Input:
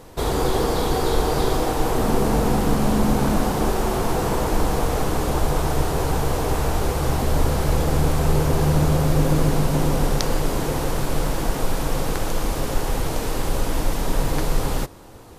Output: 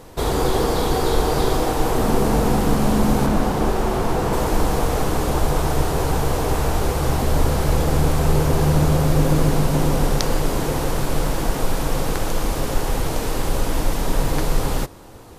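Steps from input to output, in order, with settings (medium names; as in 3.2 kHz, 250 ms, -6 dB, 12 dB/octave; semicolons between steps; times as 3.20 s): 3.26–4.33 s: treble shelf 4.4 kHz -6 dB; trim +1.5 dB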